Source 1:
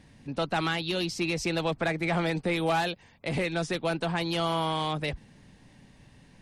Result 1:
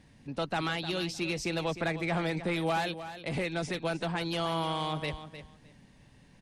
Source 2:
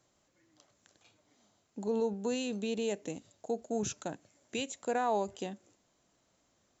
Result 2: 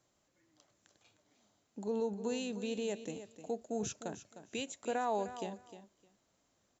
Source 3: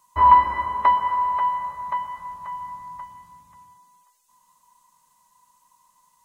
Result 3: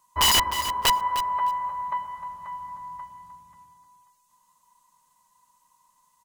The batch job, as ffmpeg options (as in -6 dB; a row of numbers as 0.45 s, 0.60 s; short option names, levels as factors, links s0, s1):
-af "aeval=exprs='(mod(3.55*val(0)+1,2)-1)/3.55':c=same,aecho=1:1:306|612:0.251|0.0427,volume=0.668"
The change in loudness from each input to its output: -3.0 LU, -3.0 LU, -3.5 LU